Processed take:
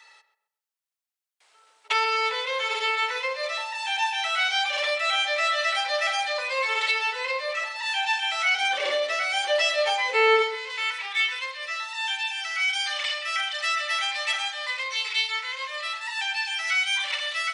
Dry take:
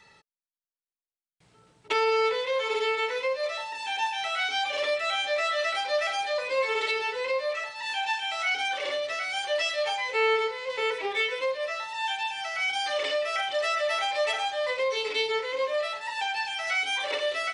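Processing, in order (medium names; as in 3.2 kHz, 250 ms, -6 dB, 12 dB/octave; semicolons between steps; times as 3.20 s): Bessel high-pass 890 Hz, order 4, from 8.60 s 350 Hz, from 10.42 s 1.5 kHz; filtered feedback delay 131 ms, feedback 32%, low-pass 1.8 kHz, level -11 dB; trim +5 dB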